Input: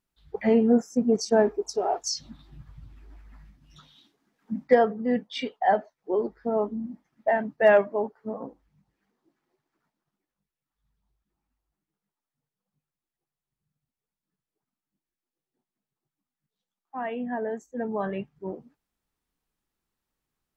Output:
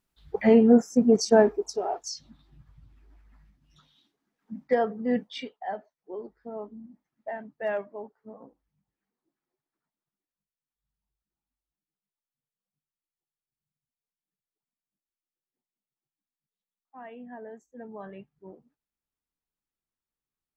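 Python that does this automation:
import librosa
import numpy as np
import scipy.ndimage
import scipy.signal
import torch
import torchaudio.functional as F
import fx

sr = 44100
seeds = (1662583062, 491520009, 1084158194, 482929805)

y = fx.gain(x, sr, db=fx.line((1.34, 3.0), (2.23, -8.0), (4.52, -8.0), (5.23, 0.5), (5.6, -12.0)))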